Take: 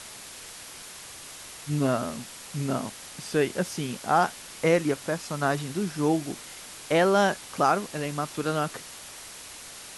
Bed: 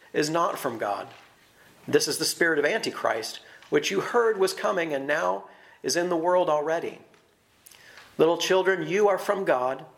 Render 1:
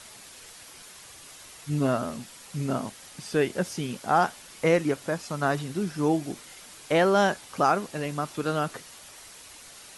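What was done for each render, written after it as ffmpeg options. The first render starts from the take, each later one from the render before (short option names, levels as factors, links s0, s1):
-af "afftdn=nr=6:nf=-44"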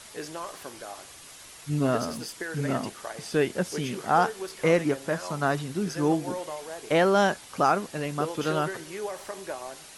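-filter_complex "[1:a]volume=0.224[s0];[0:a][s0]amix=inputs=2:normalize=0"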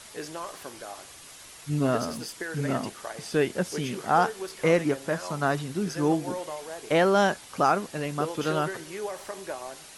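-af anull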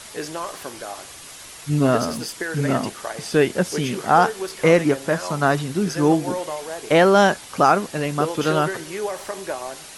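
-af "volume=2.24,alimiter=limit=0.708:level=0:latency=1"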